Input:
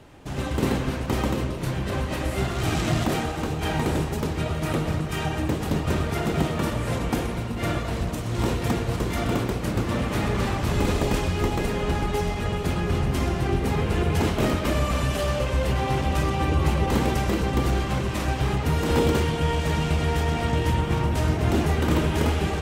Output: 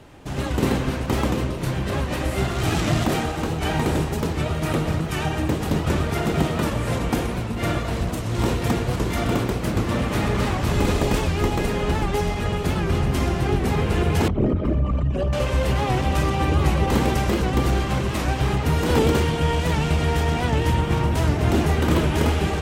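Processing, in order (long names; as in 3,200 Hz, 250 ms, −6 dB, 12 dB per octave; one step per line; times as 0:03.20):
0:14.28–0:15.33: spectral envelope exaggerated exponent 2
wow of a warped record 78 rpm, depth 100 cents
level +2.5 dB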